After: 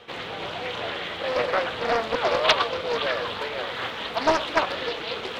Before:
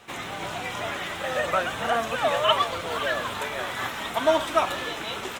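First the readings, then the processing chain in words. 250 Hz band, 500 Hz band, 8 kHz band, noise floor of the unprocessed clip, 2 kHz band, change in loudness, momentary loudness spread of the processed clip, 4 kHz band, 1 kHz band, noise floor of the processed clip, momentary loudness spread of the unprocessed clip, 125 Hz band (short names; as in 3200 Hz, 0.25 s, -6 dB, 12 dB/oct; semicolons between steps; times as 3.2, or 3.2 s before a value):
+0.5 dB, +1.0 dB, -5.0 dB, -35 dBFS, +1.0 dB, +0.5 dB, 9 LU, +2.0 dB, -0.5 dB, -35 dBFS, 9 LU, -1.5 dB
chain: resonant high shelf 5800 Hz -11 dB, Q 1.5; reverse; upward compressor, threshold -30 dBFS; reverse; added harmonics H 3 -20 dB, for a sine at -5 dBFS; small resonant body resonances 480/3200 Hz, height 12 dB; Doppler distortion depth 0.48 ms; gain +1 dB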